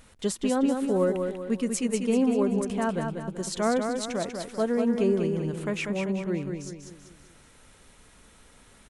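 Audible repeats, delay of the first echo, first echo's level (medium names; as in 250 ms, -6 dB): 5, 193 ms, -5.5 dB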